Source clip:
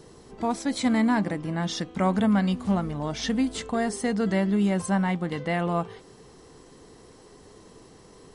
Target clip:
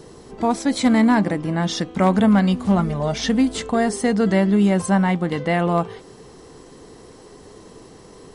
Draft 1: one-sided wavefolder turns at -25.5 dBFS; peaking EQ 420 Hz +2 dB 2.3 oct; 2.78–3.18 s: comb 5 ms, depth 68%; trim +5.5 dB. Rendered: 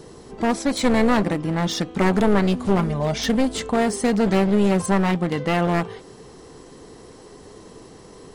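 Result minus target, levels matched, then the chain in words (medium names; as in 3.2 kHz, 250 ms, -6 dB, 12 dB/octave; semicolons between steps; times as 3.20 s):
one-sided wavefolder: distortion +26 dB
one-sided wavefolder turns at -17 dBFS; peaking EQ 420 Hz +2 dB 2.3 oct; 2.78–3.18 s: comb 5 ms, depth 68%; trim +5.5 dB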